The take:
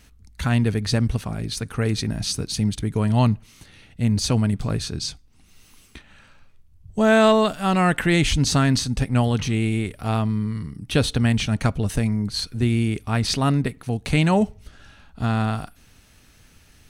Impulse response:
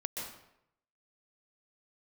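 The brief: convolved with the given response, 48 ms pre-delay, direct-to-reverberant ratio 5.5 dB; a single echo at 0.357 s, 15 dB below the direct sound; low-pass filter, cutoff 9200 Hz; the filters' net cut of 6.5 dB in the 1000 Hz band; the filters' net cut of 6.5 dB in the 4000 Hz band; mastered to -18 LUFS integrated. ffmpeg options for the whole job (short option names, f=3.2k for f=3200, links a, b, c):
-filter_complex "[0:a]lowpass=9.2k,equalizer=f=1k:t=o:g=-9,equalizer=f=4k:t=o:g=-7.5,aecho=1:1:357:0.178,asplit=2[a][b];[1:a]atrim=start_sample=2205,adelay=48[c];[b][c]afir=irnorm=-1:irlink=0,volume=-7.5dB[d];[a][d]amix=inputs=2:normalize=0,volume=4.5dB"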